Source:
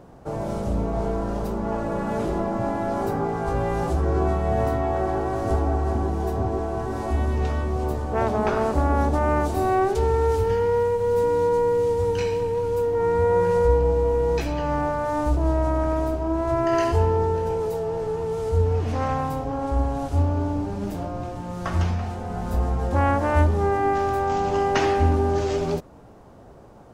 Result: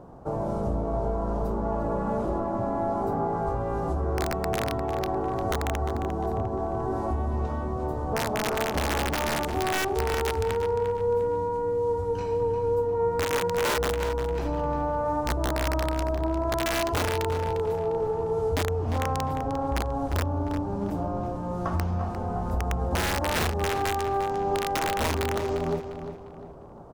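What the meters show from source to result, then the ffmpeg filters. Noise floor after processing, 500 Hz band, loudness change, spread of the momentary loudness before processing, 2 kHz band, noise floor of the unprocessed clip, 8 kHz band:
-35 dBFS, -4.5 dB, -4.0 dB, 7 LU, +0.5 dB, -45 dBFS, n/a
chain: -filter_complex "[0:a]highshelf=f=1.5k:t=q:w=1.5:g=-8,aeval=exprs='(mod(4.22*val(0)+1,2)-1)/4.22':c=same,acompressor=threshold=-24dB:ratio=6,asplit=2[a][b];[b]adelay=351,lowpass=f=5k:p=1,volume=-9dB,asplit=2[c][d];[d]adelay=351,lowpass=f=5k:p=1,volume=0.37,asplit=2[e][f];[f]adelay=351,lowpass=f=5k:p=1,volume=0.37,asplit=2[g][h];[h]adelay=351,lowpass=f=5k:p=1,volume=0.37[i];[c][e][g][i]amix=inputs=4:normalize=0[j];[a][j]amix=inputs=2:normalize=0"

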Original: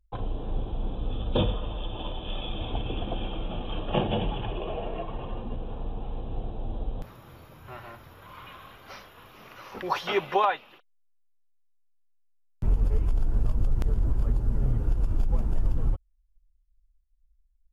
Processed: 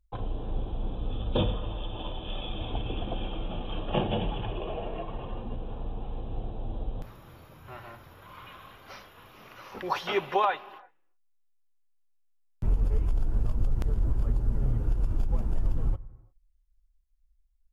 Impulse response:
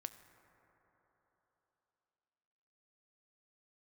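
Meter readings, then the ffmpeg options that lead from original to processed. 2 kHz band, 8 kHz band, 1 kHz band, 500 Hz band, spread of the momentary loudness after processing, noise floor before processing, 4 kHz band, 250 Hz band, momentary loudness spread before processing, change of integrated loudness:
-1.5 dB, n/a, -1.5 dB, -1.5 dB, 19 LU, -66 dBFS, -1.5 dB, -1.5 dB, 19 LU, -1.5 dB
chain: -filter_complex "[0:a]asplit=2[a][b];[1:a]atrim=start_sample=2205,afade=t=out:st=0.42:d=0.01,atrim=end_sample=18963[c];[b][c]afir=irnorm=-1:irlink=0,volume=0.5dB[d];[a][d]amix=inputs=2:normalize=0,volume=-6dB"

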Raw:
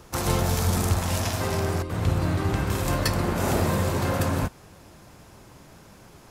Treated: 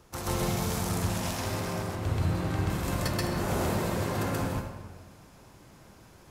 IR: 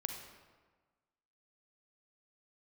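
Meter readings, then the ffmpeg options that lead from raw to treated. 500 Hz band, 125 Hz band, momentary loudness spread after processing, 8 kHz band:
-5.0 dB, -5.5 dB, 5 LU, -5.0 dB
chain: -filter_complex "[0:a]asplit=2[a][b];[1:a]atrim=start_sample=2205,adelay=131[c];[b][c]afir=irnorm=-1:irlink=0,volume=2.5dB[d];[a][d]amix=inputs=2:normalize=0,volume=-9dB"

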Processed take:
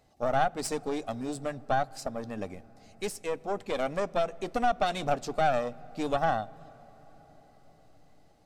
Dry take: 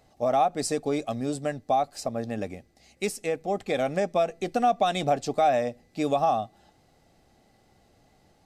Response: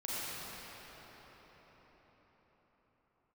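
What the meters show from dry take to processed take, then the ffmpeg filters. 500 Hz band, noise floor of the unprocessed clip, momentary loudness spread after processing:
-4.5 dB, -63 dBFS, 10 LU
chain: -filter_complex "[0:a]aeval=exprs='0.282*(cos(1*acos(clip(val(0)/0.282,-1,1)))-cos(1*PI/2))+0.0562*(cos(4*acos(clip(val(0)/0.282,-1,1)))-cos(4*PI/2))':c=same,asplit=2[a][b];[b]lowshelf=f=210:g=11.5[c];[1:a]atrim=start_sample=2205,highshelf=f=8.6k:g=-10.5[d];[c][d]afir=irnorm=-1:irlink=0,volume=-27.5dB[e];[a][e]amix=inputs=2:normalize=0,volume=-4.5dB"

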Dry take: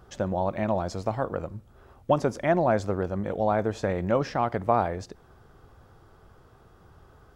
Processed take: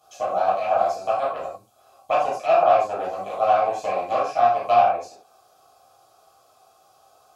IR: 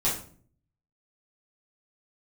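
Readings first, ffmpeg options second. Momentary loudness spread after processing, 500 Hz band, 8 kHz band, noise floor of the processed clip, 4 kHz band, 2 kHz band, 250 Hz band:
10 LU, +4.5 dB, n/a, -58 dBFS, +5.0 dB, +2.5 dB, -13.0 dB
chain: -filter_complex "[0:a]aeval=exprs='0.376*(cos(1*acos(clip(val(0)/0.376,-1,1)))-cos(1*PI/2))+0.119*(cos(6*acos(clip(val(0)/0.376,-1,1)))-cos(6*PI/2))':c=same,acrossover=split=3700[a][b];[a]asplit=3[c][d][e];[c]bandpass=f=730:t=q:w=8,volume=0dB[f];[d]bandpass=f=1.09k:t=q:w=8,volume=-6dB[g];[e]bandpass=f=2.44k:t=q:w=8,volume=-9dB[h];[f][g][h]amix=inputs=3:normalize=0[i];[b]acompressor=threshold=-56dB:ratio=6[j];[i][j]amix=inputs=2:normalize=0,lowshelf=f=470:g=-8[k];[1:a]atrim=start_sample=2205,atrim=end_sample=3528,asetrate=30429,aresample=44100[l];[k][l]afir=irnorm=-1:irlink=0"

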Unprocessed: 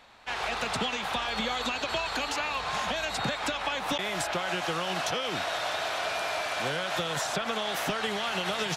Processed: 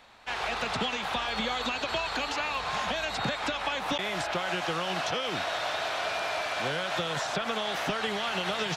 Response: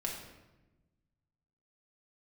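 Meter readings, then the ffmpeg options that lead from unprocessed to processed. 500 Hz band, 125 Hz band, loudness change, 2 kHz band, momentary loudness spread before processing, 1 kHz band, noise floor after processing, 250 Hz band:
0.0 dB, 0.0 dB, 0.0 dB, 0.0 dB, 1 LU, 0.0 dB, -36 dBFS, 0.0 dB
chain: -filter_complex "[0:a]acrossover=split=6200[a][b];[b]acompressor=threshold=-52dB:ratio=4:attack=1:release=60[c];[a][c]amix=inputs=2:normalize=0"

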